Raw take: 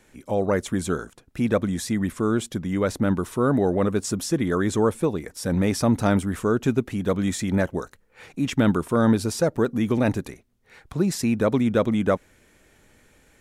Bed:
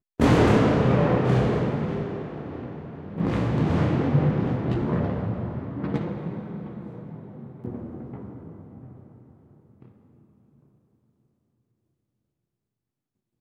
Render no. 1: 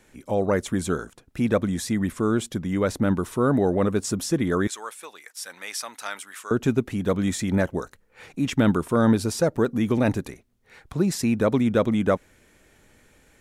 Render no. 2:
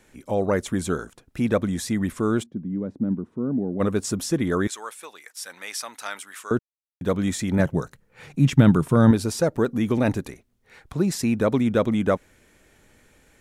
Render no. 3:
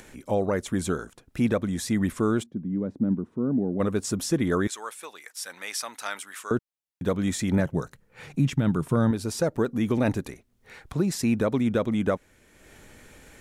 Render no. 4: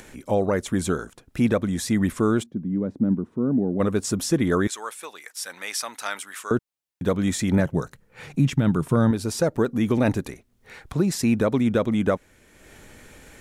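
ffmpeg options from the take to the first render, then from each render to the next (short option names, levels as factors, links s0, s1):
-filter_complex "[0:a]asettb=1/sr,asplit=3[s0][s1][s2];[s0]atrim=end=4.674[s3];[s1]atrim=start=4.67:end=6.51,asetpts=PTS-STARTPTS,afade=t=in:d=0.004:c=qsin,afade=t=out:st=1.836:d=0.004:c=qsin,highpass=1500[s4];[s2]atrim=start=6.506[s5];[s3][s4]acrossfade=d=0.004:c1=hsin:c2=qsin[s6];[s6][s5]acrossfade=d=0.004:c1=qsin:c2=hsin"
-filter_complex "[0:a]asplit=3[s0][s1][s2];[s0]afade=t=out:st=2.42:d=0.02[s3];[s1]bandpass=f=220:t=q:w=2,afade=t=in:st=2.42:d=0.02,afade=t=out:st=3.79:d=0.02[s4];[s2]afade=t=in:st=3.79:d=0.02[s5];[s3][s4][s5]amix=inputs=3:normalize=0,asettb=1/sr,asplit=3[s6][s7][s8];[s6]atrim=end=7.594[s9];[s7]atrim=start=7.59:end=9.11,asetpts=PTS-STARTPTS,afade=t=in:d=0.004:c=qsin,afade=t=out:st=1.516:d=0.004:c=qsin,equalizer=f=140:t=o:w=0.75:g=13.5[s10];[s8]atrim=start=9.106[s11];[s9][s10]acrossfade=d=0.004:c1=hsin:c2=qsin[s12];[s12][s11]acrossfade=d=0.004:c1=qsin:c2=hsin,asplit=3[s13][s14][s15];[s13]atrim=end=6.59,asetpts=PTS-STARTPTS,afade=t=out:st=6.586:d=0.004:c=hsin[s16];[s14]atrim=start=6.59:end=7.01,asetpts=PTS-STARTPTS,volume=0[s17];[s15]atrim=start=7.01,asetpts=PTS-STARTPTS,afade=t=in:d=0.004:c=hsin[s18];[s16][s17][s18]concat=n=3:v=0:a=1"
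-af "acompressor=mode=upward:threshold=0.00891:ratio=2.5,alimiter=limit=0.2:level=0:latency=1:release=430"
-af "volume=1.41"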